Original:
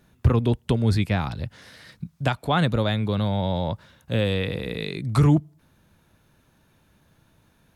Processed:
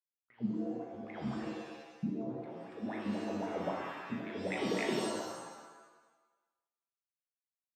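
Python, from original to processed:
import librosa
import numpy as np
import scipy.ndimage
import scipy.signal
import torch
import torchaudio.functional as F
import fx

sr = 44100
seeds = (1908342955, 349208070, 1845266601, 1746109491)

y = fx.env_lowpass(x, sr, base_hz=630.0, full_db=-20.0)
y = fx.over_compress(y, sr, threshold_db=-27.0, ratio=-0.5)
y = fx.backlash(y, sr, play_db=-32.5)
y = fx.wah_lfo(y, sr, hz=3.8, low_hz=210.0, high_hz=2300.0, q=13.0)
y = fx.rev_shimmer(y, sr, seeds[0], rt60_s=1.1, semitones=7, shimmer_db=-2, drr_db=0.5)
y = y * 10.0 ** (3.0 / 20.0)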